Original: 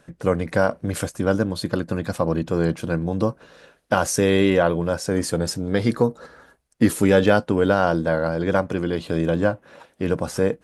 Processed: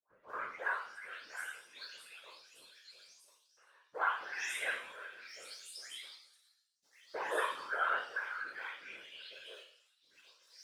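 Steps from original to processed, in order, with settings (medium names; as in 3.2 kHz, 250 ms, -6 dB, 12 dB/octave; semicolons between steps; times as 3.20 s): delay that grows with frequency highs late, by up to 420 ms; high-pass 160 Hz 12 dB/octave; treble shelf 5.7 kHz -8.5 dB; waveshaping leveller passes 1; LFO high-pass saw up 0.28 Hz 980–6000 Hz; chord resonator F3 fifth, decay 0.61 s; whisper effect; trim +2.5 dB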